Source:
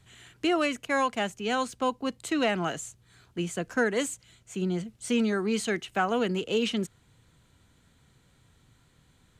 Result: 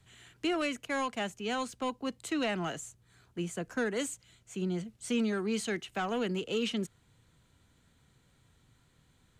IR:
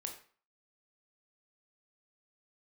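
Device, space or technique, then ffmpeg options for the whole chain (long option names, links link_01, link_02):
one-band saturation: -filter_complex "[0:a]asettb=1/sr,asplit=3[link_01][link_02][link_03];[link_01]atrim=end=2.774[link_04];[link_02]atrim=start=2.77:end=3.96,asetpts=PTS-STARTPTS,afade=type=in:duration=0.004:curve=qsin,afade=type=out:start_time=1.186:duration=0.004:curve=qsin,equalizer=frequency=3600:width_type=o:width=1.6:gain=-3[link_05];[link_03]atrim=start=3.956[link_06];[link_04][link_05]acrossfade=duration=0.004:curve1=hsin:curve2=qsin[link_07];[link_07][link_06]acrossfade=duration=0.004:curve1=qsin:curve2=hsin,acrossover=split=320|2200[link_08][link_09][link_10];[link_09]asoftclip=type=tanh:threshold=-25.5dB[link_11];[link_08][link_11][link_10]amix=inputs=3:normalize=0,volume=-4dB"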